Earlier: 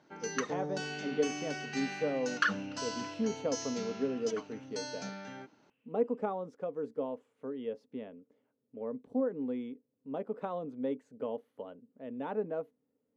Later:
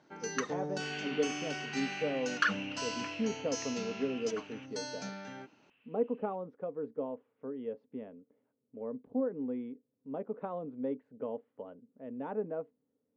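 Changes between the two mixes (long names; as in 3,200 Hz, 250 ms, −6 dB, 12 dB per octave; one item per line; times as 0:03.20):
speech: add high-frequency loss of the air 490 metres
second sound +10.5 dB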